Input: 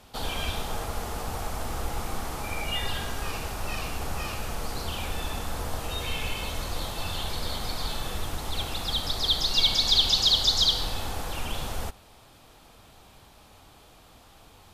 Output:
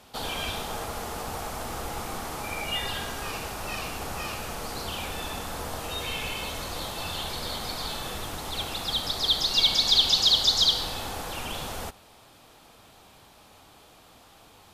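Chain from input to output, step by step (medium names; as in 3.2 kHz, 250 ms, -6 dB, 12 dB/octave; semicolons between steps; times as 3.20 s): bass shelf 84 Hz -11.5 dB; trim +1 dB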